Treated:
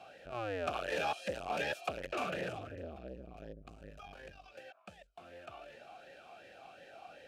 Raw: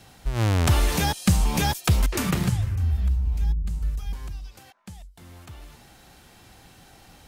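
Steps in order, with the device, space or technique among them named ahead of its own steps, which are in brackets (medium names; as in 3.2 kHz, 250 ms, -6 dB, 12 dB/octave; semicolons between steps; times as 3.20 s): talk box (valve stage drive 29 dB, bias 0.4; talking filter a-e 2.7 Hz); trim +12 dB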